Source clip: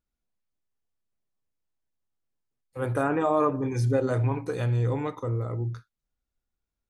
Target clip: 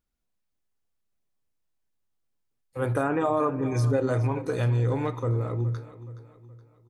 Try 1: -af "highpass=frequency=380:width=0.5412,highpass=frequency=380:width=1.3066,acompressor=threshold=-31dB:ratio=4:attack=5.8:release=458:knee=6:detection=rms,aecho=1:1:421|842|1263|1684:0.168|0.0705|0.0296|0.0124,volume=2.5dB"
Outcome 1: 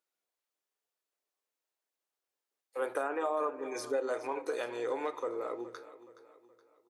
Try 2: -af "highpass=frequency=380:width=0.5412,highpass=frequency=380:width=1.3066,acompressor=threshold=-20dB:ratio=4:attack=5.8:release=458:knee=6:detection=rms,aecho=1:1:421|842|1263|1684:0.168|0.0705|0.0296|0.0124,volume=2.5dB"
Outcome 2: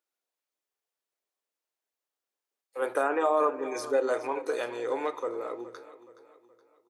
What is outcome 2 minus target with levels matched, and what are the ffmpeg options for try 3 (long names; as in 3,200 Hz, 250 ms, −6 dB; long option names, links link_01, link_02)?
500 Hz band +3.0 dB
-af "acompressor=threshold=-20dB:ratio=4:attack=5.8:release=458:knee=6:detection=rms,aecho=1:1:421|842|1263|1684:0.168|0.0705|0.0296|0.0124,volume=2.5dB"